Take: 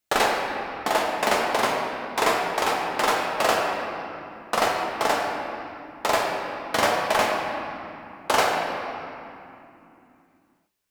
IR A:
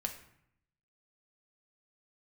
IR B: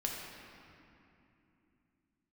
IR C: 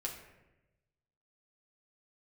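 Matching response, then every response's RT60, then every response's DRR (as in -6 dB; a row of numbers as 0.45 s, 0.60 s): B; 0.70 s, 2.9 s, 1.0 s; 3.0 dB, -2.0 dB, -1.5 dB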